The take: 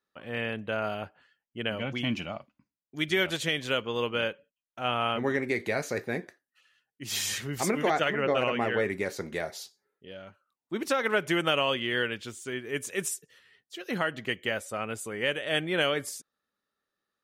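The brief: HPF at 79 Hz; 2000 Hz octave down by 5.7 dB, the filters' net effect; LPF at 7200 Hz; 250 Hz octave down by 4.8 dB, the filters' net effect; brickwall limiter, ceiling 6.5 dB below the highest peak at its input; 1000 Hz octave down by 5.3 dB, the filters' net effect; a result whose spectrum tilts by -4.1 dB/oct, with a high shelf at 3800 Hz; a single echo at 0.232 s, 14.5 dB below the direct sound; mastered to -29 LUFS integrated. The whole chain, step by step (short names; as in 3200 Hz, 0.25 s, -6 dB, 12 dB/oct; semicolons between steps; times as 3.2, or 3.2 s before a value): HPF 79 Hz; LPF 7200 Hz; bell 250 Hz -6 dB; bell 1000 Hz -5.5 dB; bell 2000 Hz -4 dB; high shelf 3800 Hz -5.5 dB; limiter -24.5 dBFS; echo 0.232 s -14.5 dB; gain +7.5 dB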